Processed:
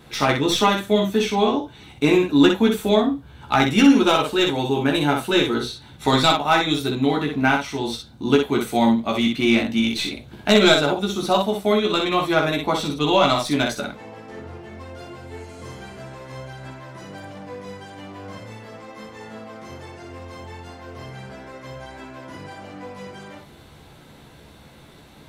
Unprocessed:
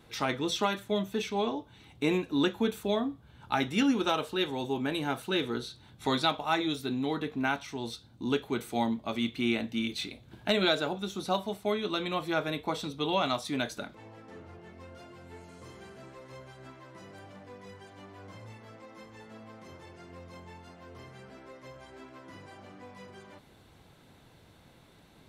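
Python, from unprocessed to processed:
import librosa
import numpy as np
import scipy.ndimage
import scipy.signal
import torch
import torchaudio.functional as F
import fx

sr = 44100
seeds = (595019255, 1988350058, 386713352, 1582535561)

y = fx.tracing_dist(x, sr, depth_ms=0.033)
y = fx.room_early_taps(y, sr, ms=(14, 61), db=(-3.5, -4.0))
y = y * 10.0 ** (8.5 / 20.0)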